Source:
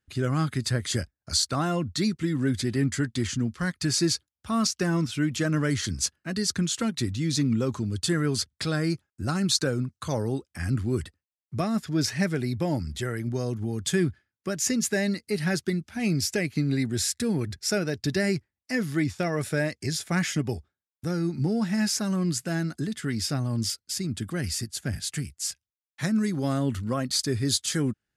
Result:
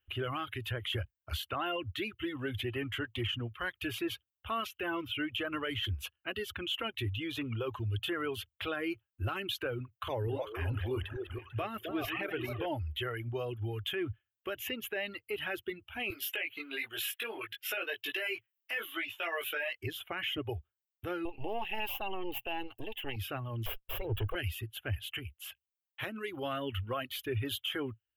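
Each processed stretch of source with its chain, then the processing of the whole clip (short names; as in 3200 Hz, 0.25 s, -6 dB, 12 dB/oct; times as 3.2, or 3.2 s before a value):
9.83–12.66 regenerating reverse delay 0.222 s, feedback 42%, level -7 dB + delay with a stepping band-pass 0.262 s, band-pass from 430 Hz, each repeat 1.4 oct, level -4.5 dB
16.1–19.78 HPF 400 Hz + tilt shelf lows -5.5 dB, about 1100 Hz + doubler 18 ms -2 dB
21.25–23.16 half-wave gain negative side -12 dB + bell 1400 Hz -14.5 dB 0.39 oct + small resonant body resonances 820/2700 Hz, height 12 dB, ringing for 20 ms
23.66–24.35 minimum comb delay 1.8 ms + tilt shelf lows +5.5 dB, about 1100 Hz + sample leveller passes 1
whole clip: reverb removal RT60 0.82 s; EQ curve 110 Hz 0 dB, 160 Hz -29 dB, 350 Hz -4 dB, 760 Hz -2 dB, 1300 Hz 0 dB, 2000 Hz -3 dB, 3000 Hz +12 dB, 4600 Hz -27 dB, 8500 Hz -26 dB, 14000 Hz +9 dB; limiter -26 dBFS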